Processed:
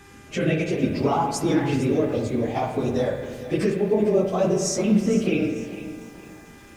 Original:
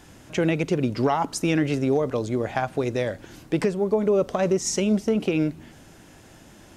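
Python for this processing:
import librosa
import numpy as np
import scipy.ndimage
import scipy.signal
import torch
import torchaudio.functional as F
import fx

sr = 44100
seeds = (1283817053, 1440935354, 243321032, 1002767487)

y = fx.phase_scramble(x, sr, seeds[0], window_ms=50)
y = fx.filter_lfo_notch(y, sr, shape='saw_up', hz=0.62, low_hz=590.0, high_hz=3000.0, q=1.6)
y = fx.rev_spring(y, sr, rt60_s=1.3, pass_ms=(38, 51), chirp_ms=30, drr_db=4.5)
y = fx.dmg_buzz(y, sr, base_hz=400.0, harmonics=6, level_db=-53.0, tilt_db=-1, odd_only=False)
y = fx.echo_crushed(y, sr, ms=453, feedback_pct=35, bits=8, wet_db=-13.5)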